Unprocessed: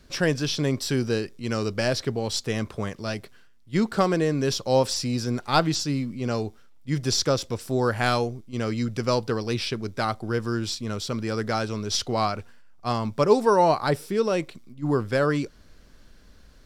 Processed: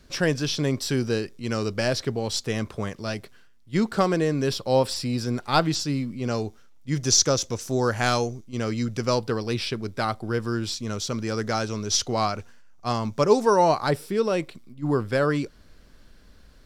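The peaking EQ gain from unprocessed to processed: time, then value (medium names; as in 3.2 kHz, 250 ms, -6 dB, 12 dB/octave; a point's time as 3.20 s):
peaking EQ 6.3 kHz 0.31 oct
+1 dB
from 4.48 s -9.5 dB
from 5.21 s -1.5 dB
from 6.27 s +5.5 dB
from 7.03 s +14 dB
from 8.44 s +5 dB
from 9.19 s -2 dB
from 10.75 s +8.5 dB
from 13.91 s -3 dB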